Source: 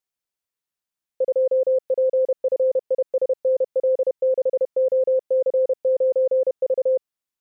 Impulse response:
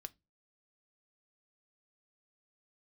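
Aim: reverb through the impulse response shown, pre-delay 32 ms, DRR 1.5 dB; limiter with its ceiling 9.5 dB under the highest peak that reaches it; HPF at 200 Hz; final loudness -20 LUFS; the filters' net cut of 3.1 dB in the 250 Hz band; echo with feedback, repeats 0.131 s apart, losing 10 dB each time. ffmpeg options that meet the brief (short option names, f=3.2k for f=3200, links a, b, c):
-filter_complex "[0:a]highpass=200,equalizer=f=250:t=o:g=-4.5,alimiter=level_in=1.5dB:limit=-24dB:level=0:latency=1,volume=-1.5dB,aecho=1:1:131|262|393|524:0.316|0.101|0.0324|0.0104,asplit=2[a][b];[1:a]atrim=start_sample=2205,adelay=32[c];[b][c]afir=irnorm=-1:irlink=0,volume=3.5dB[d];[a][d]amix=inputs=2:normalize=0,volume=9.5dB"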